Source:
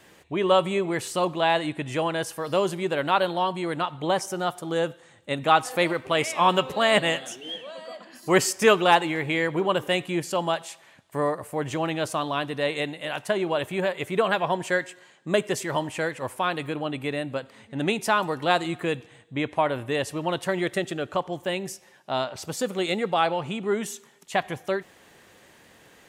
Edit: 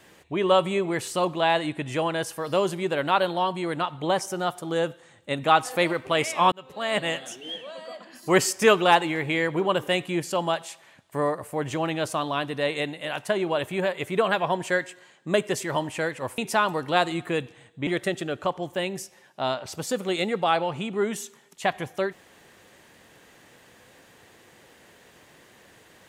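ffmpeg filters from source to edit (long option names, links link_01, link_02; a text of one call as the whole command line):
ffmpeg -i in.wav -filter_complex "[0:a]asplit=4[link_01][link_02][link_03][link_04];[link_01]atrim=end=6.52,asetpts=PTS-STARTPTS,afade=type=out:start_time=6.516:duration=0.004:curve=hsin[link_05];[link_02]atrim=start=6.52:end=16.382,asetpts=PTS-STARTPTS,afade=type=in:duration=1.2:curve=qsin[link_06];[link_03]atrim=start=17.918:end=19.412[link_07];[link_04]atrim=start=20.568[link_08];[link_05][link_06]concat=n=2:v=0:a=1[link_09];[link_09][link_07]acrossfade=duration=0.004:curve1=hsin:curve2=hsin[link_10];[link_10][link_08]acrossfade=duration=0.004:curve1=hsin:curve2=hsin" out.wav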